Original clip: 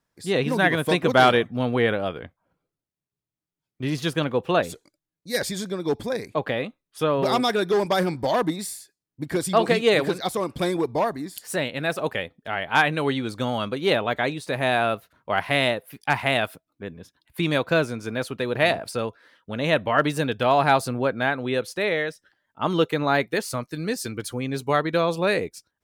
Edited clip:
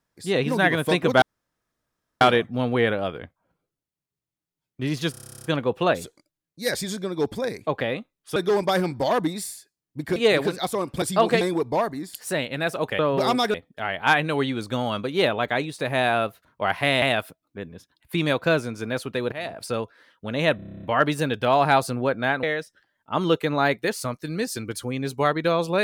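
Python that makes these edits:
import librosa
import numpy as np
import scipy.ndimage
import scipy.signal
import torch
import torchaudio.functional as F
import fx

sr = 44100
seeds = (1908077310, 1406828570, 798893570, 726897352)

y = fx.edit(x, sr, fx.insert_room_tone(at_s=1.22, length_s=0.99),
    fx.stutter(start_s=4.12, slice_s=0.03, count=12),
    fx.move(start_s=7.04, length_s=0.55, to_s=12.22),
    fx.move(start_s=9.39, length_s=0.39, to_s=10.64),
    fx.cut(start_s=15.7, length_s=0.57),
    fx.fade_in_from(start_s=18.57, length_s=0.34, curve='qua', floor_db=-14.5),
    fx.stutter(start_s=19.81, slice_s=0.03, count=10),
    fx.cut(start_s=21.41, length_s=0.51), tone=tone)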